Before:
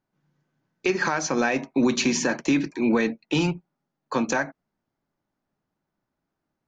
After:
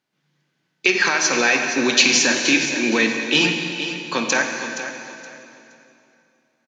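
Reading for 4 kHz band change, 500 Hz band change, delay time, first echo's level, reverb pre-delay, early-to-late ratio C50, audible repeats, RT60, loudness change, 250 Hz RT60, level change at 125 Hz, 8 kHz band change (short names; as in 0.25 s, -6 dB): +14.0 dB, +2.5 dB, 0.47 s, -11.0 dB, 30 ms, 3.5 dB, 2, 2.8 s, +6.5 dB, 3.1 s, -2.5 dB, +11.0 dB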